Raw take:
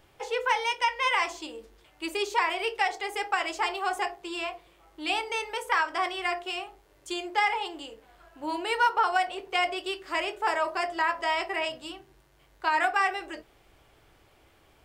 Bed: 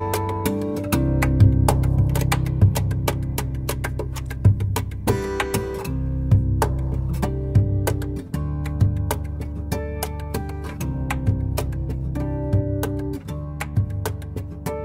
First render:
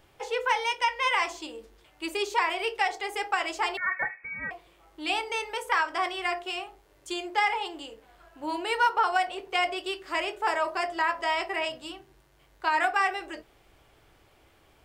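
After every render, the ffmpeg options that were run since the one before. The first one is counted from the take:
-filter_complex "[0:a]asettb=1/sr,asplit=3[a][b][c];[a]atrim=end=3.774[d];[b]atrim=start=3.77:end=4.51,asetpts=PTS-STARTPTS,afade=t=in:d=0.004:c=qsin,afade=t=out:st=0.736:d=0.004:c=qsin,lowpass=f=2.2k:t=q:w=0.5098,lowpass=f=2.2k:t=q:w=0.6013,lowpass=f=2.2k:t=q:w=0.9,lowpass=f=2.2k:t=q:w=2.563,afreqshift=-2600[e];[c]atrim=start=4.506[f];[d][e]acrossfade=d=0.004:c1=hsin:c2=qsin[g];[g][f]acrossfade=d=0.004:c1=qsin:c2=hsin"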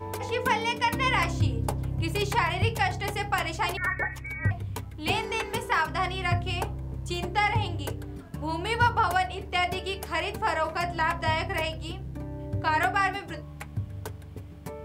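-filter_complex "[1:a]volume=-11.5dB[a];[0:a][a]amix=inputs=2:normalize=0"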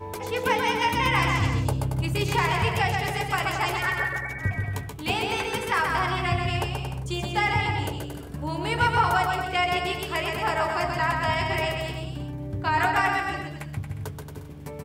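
-filter_complex "[0:a]asplit=2[a][b];[b]adelay=14,volume=-10.5dB[c];[a][c]amix=inputs=2:normalize=0,aecho=1:1:130|227.5|300.6|355.5|396.6:0.631|0.398|0.251|0.158|0.1"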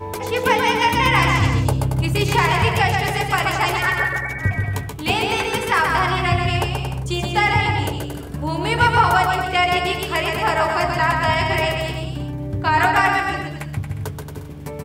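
-af "volume=6.5dB"

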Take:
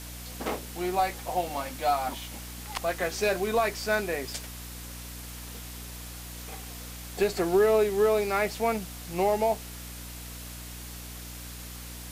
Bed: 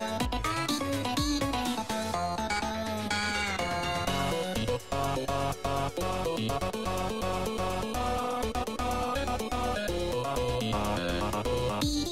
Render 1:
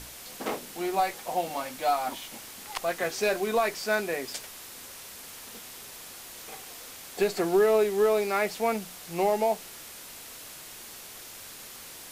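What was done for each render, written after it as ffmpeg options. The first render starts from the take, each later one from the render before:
-af "bandreject=f=60:t=h:w=6,bandreject=f=120:t=h:w=6,bandreject=f=180:t=h:w=6,bandreject=f=240:t=h:w=6,bandreject=f=300:t=h:w=6"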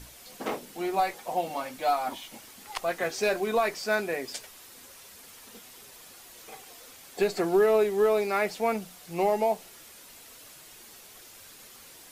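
-af "afftdn=nr=7:nf=-45"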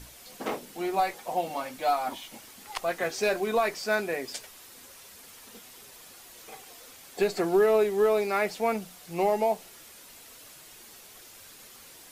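-af anull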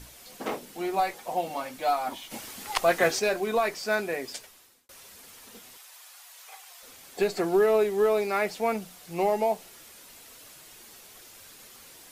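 -filter_complex "[0:a]asplit=3[a][b][c];[a]afade=t=out:st=2.3:d=0.02[d];[b]acontrast=88,afade=t=in:st=2.3:d=0.02,afade=t=out:st=3.18:d=0.02[e];[c]afade=t=in:st=3.18:d=0.02[f];[d][e][f]amix=inputs=3:normalize=0,asettb=1/sr,asplit=3[g][h][i];[g]atrim=end=5.774[j];[h]atrim=start=5.77:end=6.83,asetpts=PTS-STARTPTS,afade=t=in:d=0.004:c=qsin,afade=t=out:st=1.056:d=0.004:c=qsin,highpass=f=720:w=0.5412,highpass=f=720:w=1.3066[k];[i]atrim=start=6.826[l];[j][k]acrossfade=d=0.004:c1=hsin:c2=qsin[m];[m][l]acrossfade=d=0.004:c1=qsin:c2=hsin,asplit=2[n][o];[n]atrim=end=4.89,asetpts=PTS-STARTPTS,afade=t=out:st=4.28:d=0.61[p];[o]atrim=start=4.89,asetpts=PTS-STARTPTS,afade=t=in:d=0.004:c=hsin[q];[p][q]concat=n=2:v=0:a=1"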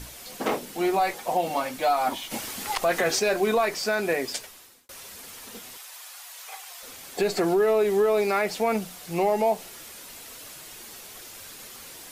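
-af "acontrast=68,alimiter=limit=-14.5dB:level=0:latency=1:release=84"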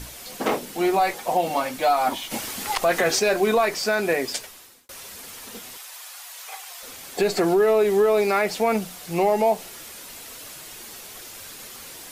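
-af "volume=3dB"

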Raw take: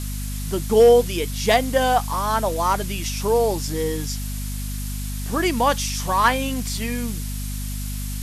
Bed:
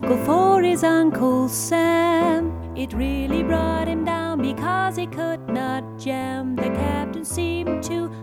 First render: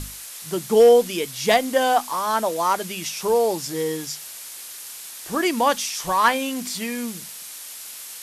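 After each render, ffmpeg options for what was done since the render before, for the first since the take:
-af "bandreject=f=50:t=h:w=6,bandreject=f=100:t=h:w=6,bandreject=f=150:t=h:w=6,bandreject=f=200:t=h:w=6,bandreject=f=250:t=h:w=6"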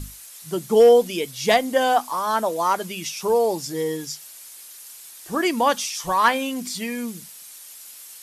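-af "afftdn=nr=8:nf=-38"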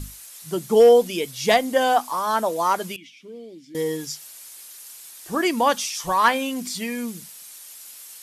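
-filter_complex "[0:a]asettb=1/sr,asplit=3[a][b][c];[a]atrim=end=2.964[d];[b]atrim=start=2.96:end=3.75,asetpts=PTS-STARTPTS,afade=t=in:d=0.004:c=qsin,afade=t=out:st=0.786:d=0.004:c=qsin,asplit=3[e][f][g];[e]bandpass=f=270:t=q:w=8,volume=0dB[h];[f]bandpass=f=2.29k:t=q:w=8,volume=-6dB[i];[g]bandpass=f=3.01k:t=q:w=8,volume=-9dB[j];[h][i][j]amix=inputs=3:normalize=0[k];[c]atrim=start=3.746[l];[d][k]acrossfade=d=0.004:c1=hsin:c2=qsin[m];[m][l]acrossfade=d=0.004:c1=qsin:c2=hsin"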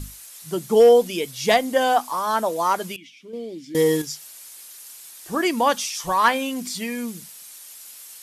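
-filter_complex "[0:a]asettb=1/sr,asplit=3[a][b][c];[a]atrim=end=3.334[d];[b]atrim=start=3.33:end=4.02,asetpts=PTS-STARTPTS,afade=t=in:d=0.004:c=qsin,afade=t=out:st=0.686:d=0.004:c=qsin,acontrast=85[e];[c]atrim=start=4.016[f];[d][e]acrossfade=d=0.004:c1=hsin:c2=qsin[g];[g][f]acrossfade=d=0.004:c1=qsin:c2=hsin"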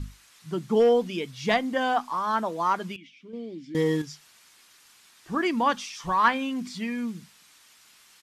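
-af "firequalizer=gain_entry='entry(210,0);entry(530,-9);entry(1100,-2);entry(11000,-22)':delay=0.05:min_phase=1"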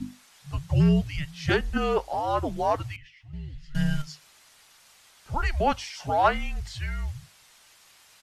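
-af "afreqshift=-300"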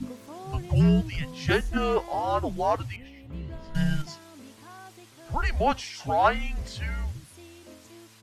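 -filter_complex "[1:a]volume=-25dB[a];[0:a][a]amix=inputs=2:normalize=0"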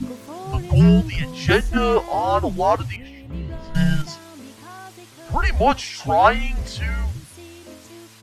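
-af "volume=7dB"

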